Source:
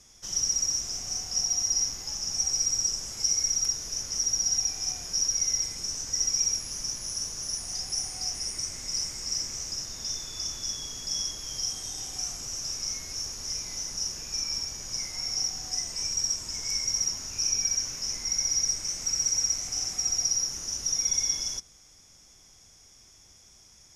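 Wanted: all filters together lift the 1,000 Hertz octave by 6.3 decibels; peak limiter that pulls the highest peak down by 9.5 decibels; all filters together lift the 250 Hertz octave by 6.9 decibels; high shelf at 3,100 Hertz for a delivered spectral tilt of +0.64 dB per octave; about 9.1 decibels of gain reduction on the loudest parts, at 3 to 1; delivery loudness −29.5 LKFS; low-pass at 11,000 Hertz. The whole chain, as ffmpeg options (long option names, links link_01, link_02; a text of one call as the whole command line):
ffmpeg -i in.wav -af "lowpass=11000,equalizer=frequency=250:width_type=o:gain=8.5,equalizer=frequency=1000:width_type=o:gain=7,highshelf=frequency=3100:gain=6.5,acompressor=threshold=-30dB:ratio=3,volume=3dB,alimiter=limit=-23.5dB:level=0:latency=1" out.wav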